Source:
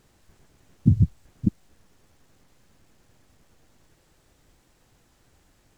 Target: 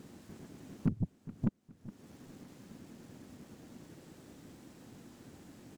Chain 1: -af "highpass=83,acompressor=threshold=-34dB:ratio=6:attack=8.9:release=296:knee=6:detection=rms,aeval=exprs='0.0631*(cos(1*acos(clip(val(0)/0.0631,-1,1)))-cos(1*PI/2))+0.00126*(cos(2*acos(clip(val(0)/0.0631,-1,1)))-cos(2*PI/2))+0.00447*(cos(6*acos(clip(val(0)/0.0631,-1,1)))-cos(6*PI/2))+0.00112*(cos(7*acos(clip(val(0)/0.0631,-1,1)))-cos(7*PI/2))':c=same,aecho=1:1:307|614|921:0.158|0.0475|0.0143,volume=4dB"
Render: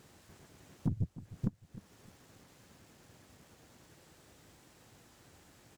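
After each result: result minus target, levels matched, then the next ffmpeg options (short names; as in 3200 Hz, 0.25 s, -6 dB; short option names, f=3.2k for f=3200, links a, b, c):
250 Hz band -6.5 dB; echo 0.109 s early
-af "highpass=83,equalizer=f=240:w=0.88:g=14,acompressor=threshold=-34dB:ratio=6:attack=8.9:release=296:knee=6:detection=rms,aeval=exprs='0.0631*(cos(1*acos(clip(val(0)/0.0631,-1,1)))-cos(1*PI/2))+0.00126*(cos(2*acos(clip(val(0)/0.0631,-1,1)))-cos(2*PI/2))+0.00447*(cos(6*acos(clip(val(0)/0.0631,-1,1)))-cos(6*PI/2))+0.00112*(cos(7*acos(clip(val(0)/0.0631,-1,1)))-cos(7*PI/2))':c=same,aecho=1:1:307|614|921:0.158|0.0475|0.0143,volume=4dB"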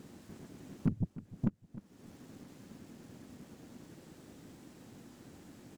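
echo 0.109 s early
-af "highpass=83,equalizer=f=240:w=0.88:g=14,acompressor=threshold=-34dB:ratio=6:attack=8.9:release=296:knee=6:detection=rms,aeval=exprs='0.0631*(cos(1*acos(clip(val(0)/0.0631,-1,1)))-cos(1*PI/2))+0.00126*(cos(2*acos(clip(val(0)/0.0631,-1,1)))-cos(2*PI/2))+0.00447*(cos(6*acos(clip(val(0)/0.0631,-1,1)))-cos(6*PI/2))+0.00112*(cos(7*acos(clip(val(0)/0.0631,-1,1)))-cos(7*PI/2))':c=same,aecho=1:1:416|832|1248:0.158|0.0475|0.0143,volume=4dB"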